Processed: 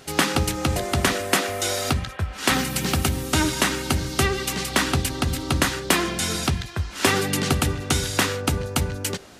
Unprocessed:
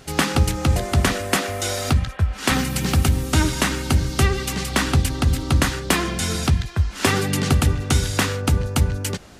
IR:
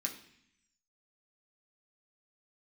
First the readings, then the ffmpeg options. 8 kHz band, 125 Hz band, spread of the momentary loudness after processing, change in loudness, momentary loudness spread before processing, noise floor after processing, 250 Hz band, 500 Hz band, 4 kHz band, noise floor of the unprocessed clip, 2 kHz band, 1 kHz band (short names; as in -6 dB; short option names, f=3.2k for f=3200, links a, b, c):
+0.5 dB, -6.0 dB, 5 LU, -2.0 dB, 3 LU, -39 dBFS, -2.0 dB, 0.0 dB, +1.0 dB, -37 dBFS, 0.0 dB, 0.0 dB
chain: -filter_complex "[0:a]lowshelf=f=82:g=-11,asplit=2[a][b];[1:a]atrim=start_sample=2205,asetrate=66150,aresample=44100[c];[b][c]afir=irnorm=-1:irlink=0,volume=-13dB[d];[a][d]amix=inputs=2:normalize=0"